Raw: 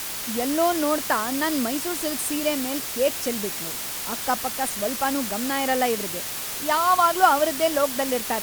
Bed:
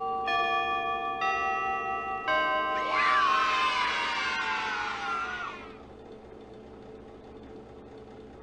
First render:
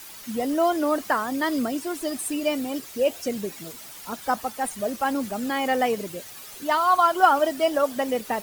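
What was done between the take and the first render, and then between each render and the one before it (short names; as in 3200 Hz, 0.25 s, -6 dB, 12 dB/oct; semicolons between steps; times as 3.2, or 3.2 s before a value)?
denoiser 13 dB, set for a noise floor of -31 dBFS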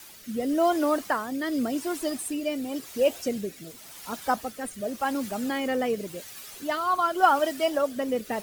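rotary speaker horn 0.9 Hz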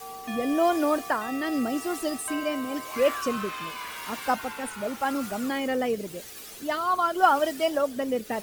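add bed -9.5 dB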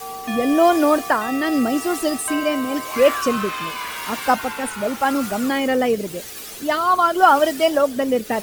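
gain +8 dB; limiter -2 dBFS, peak gain reduction 3 dB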